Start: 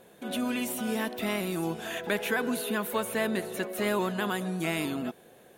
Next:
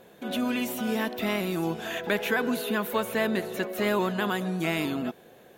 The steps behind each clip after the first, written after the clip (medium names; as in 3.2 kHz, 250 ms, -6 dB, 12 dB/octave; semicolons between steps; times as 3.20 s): peaking EQ 9.5 kHz -9 dB 0.52 oct; trim +2.5 dB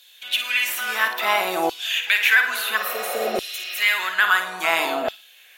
spectral replace 2.79–3.72 s, 520–5900 Hz after; flutter echo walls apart 9.3 m, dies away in 0.39 s; LFO high-pass saw down 0.59 Hz 630–3700 Hz; trim +8.5 dB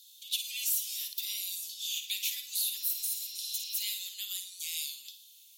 inverse Chebyshev high-pass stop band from 1.7 kHz, stop band 50 dB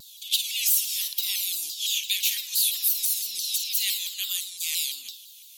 bass shelf 450 Hz +11.5 dB; vibrato with a chosen wave saw down 5.9 Hz, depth 160 cents; trim +8.5 dB